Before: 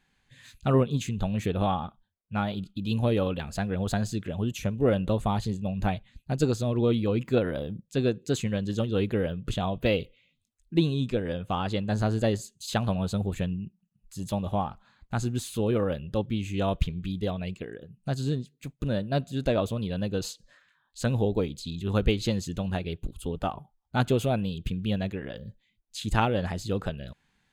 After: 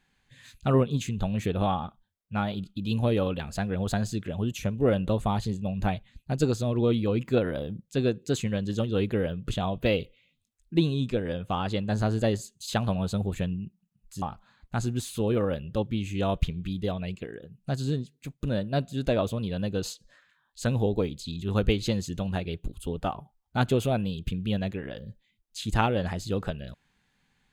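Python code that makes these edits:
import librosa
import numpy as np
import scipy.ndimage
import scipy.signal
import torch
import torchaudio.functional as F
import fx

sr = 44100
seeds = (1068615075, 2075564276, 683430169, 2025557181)

y = fx.edit(x, sr, fx.cut(start_s=14.22, length_s=0.39), tone=tone)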